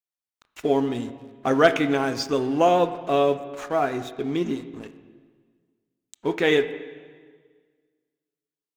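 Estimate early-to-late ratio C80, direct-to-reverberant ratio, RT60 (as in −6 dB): 13.5 dB, 11.0 dB, 1.7 s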